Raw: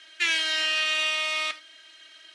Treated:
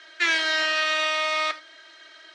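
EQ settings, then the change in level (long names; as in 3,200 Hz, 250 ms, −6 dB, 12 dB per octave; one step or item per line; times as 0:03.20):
Butterworth high-pass 300 Hz
low-pass filter 4,100 Hz 12 dB per octave
parametric band 2,800 Hz −12 dB 0.74 octaves
+9.0 dB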